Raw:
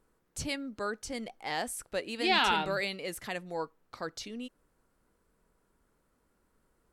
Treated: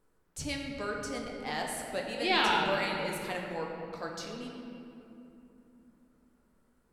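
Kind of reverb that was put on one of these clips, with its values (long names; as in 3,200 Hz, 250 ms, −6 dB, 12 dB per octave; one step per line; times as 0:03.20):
rectangular room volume 120 cubic metres, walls hard, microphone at 0.41 metres
level −2.5 dB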